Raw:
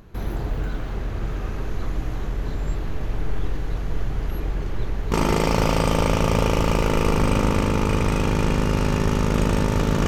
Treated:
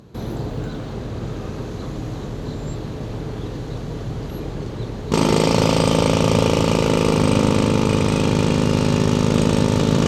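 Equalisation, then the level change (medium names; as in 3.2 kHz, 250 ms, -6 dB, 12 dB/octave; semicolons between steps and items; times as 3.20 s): high-pass 49 Hz; dynamic bell 2.9 kHz, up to +4 dB, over -39 dBFS, Q 0.9; ten-band graphic EQ 125 Hz +11 dB, 250 Hz +9 dB, 500 Hz +9 dB, 1 kHz +5 dB, 4 kHz +10 dB, 8 kHz +10 dB; -6.5 dB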